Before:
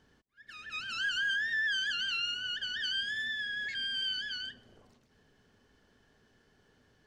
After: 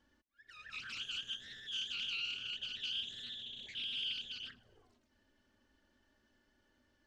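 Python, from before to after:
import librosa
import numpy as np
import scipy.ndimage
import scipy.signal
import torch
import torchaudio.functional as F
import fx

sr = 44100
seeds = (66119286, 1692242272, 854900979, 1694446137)

y = fx.env_flanger(x, sr, rest_ms=3.7, full_db=-34.5)
y = fx.doppler_dist(y, sr, depth_ms=0.27)
y = y * librosa.db_to_amplitude(-4.0)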